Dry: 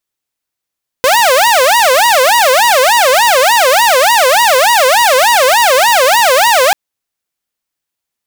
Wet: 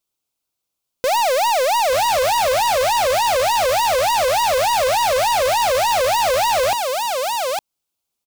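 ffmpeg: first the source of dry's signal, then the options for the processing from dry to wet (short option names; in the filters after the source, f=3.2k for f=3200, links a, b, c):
-f lavfi -i "aevalsrc='0.668*(2*mod((733*t-229/(2*PI*3.4)*sin(2*PI*3.4*t)),1)-1)':d=5.69:s=44100"
-filter_complex "[0:a]equalizer=f=1.8k:w=3.4:g=-13.5,asplit=2[a][b];[b]aecho=0:1:859:0.299[c];[a][c]amix=inputs=2:normalize=0,asoftclip=type=tanh:threshold=-15.5dB"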